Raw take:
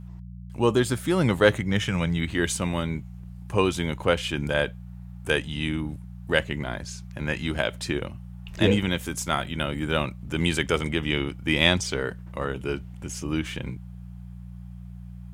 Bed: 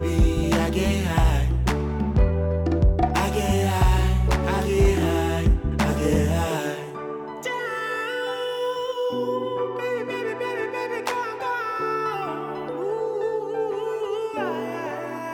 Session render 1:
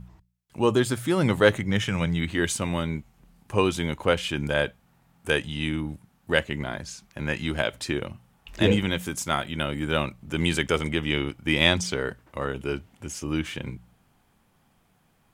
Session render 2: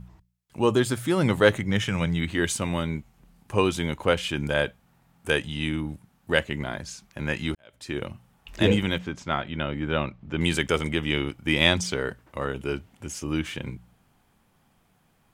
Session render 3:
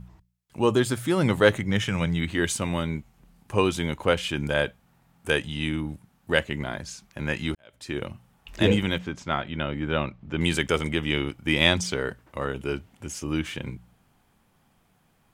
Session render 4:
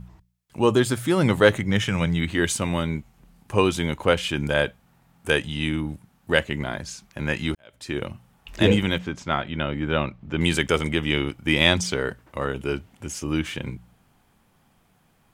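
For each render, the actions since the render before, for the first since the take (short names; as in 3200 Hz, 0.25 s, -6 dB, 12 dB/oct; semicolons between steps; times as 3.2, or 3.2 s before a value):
de-hum 60 Hz, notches 3
7.55–8.02 fade in quadratic; 8.98–10.41 air absorption 200 m
nothing audible
gain +2.5 dB; limiter -2 dBFS, peak gain reduction 1 dB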